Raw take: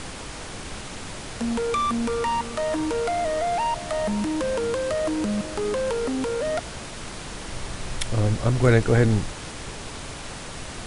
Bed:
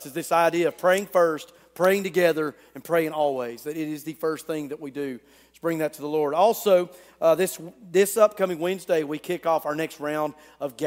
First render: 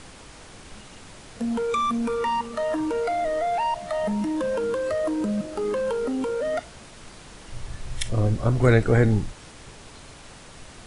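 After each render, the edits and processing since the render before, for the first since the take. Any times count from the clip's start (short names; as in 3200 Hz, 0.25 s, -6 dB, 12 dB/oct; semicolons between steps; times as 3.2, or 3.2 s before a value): noise print and reduce 9 dB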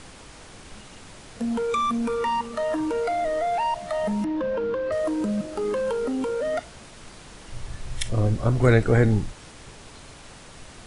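4.24–4.92 air absorption 220 m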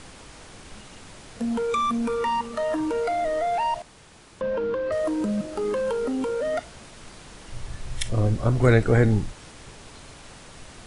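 3.82–4.41 room tone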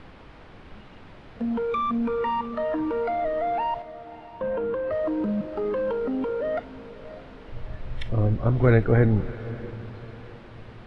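air absorption 370 m; diffused feedback echo 0.619 s, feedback 42%, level -16 dB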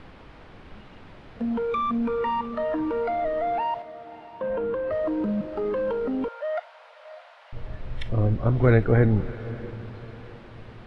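3.59–4.5 HPF 180 Hz 6 dB/oct; 6.28–7.53 steep high-pass 580 Hz 72 dB/oct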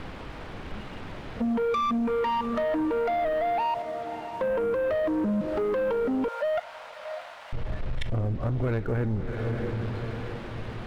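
compressor 5:1, threshold -30 dBFS, peak gain reduction 15.5 dB; sample leveller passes 2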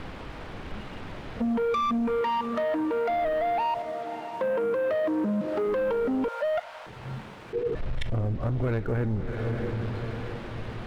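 2.21–3.09 HPF 170 Hz 6 dB/oct; 3.93–5.67 HPF 140 Hz; 6.86–7.75 frequency shift -490 Hz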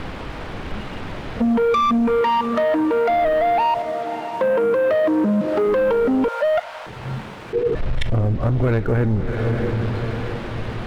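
gain +8.5 dB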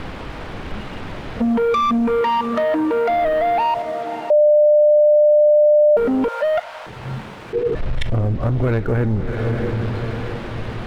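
4.3–5.97 bleep 598 Hz -9 dBFS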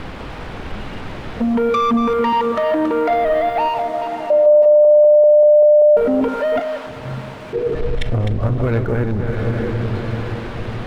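reverse delay 0.194 s, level -7 dB; analogue delay 0.191 s, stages 2048, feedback 82%, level -19 dB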